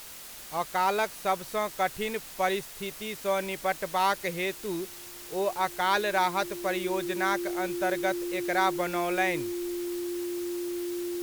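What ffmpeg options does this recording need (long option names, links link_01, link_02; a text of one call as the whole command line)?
ffmpeg -i in.wav -af "bandreject=frequency=350:width=30,afftdn=noise_reduction=30:noise_floor=-44" out.wav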